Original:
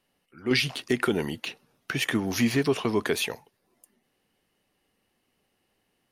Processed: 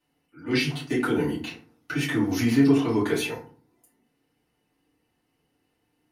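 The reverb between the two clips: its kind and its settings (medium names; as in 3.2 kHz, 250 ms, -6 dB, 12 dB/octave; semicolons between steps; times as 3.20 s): FDN reverb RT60 0.43 s, low-frequency decay 1.55×, high-frequency decay 0.55×, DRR -9 dB; trim -10 dB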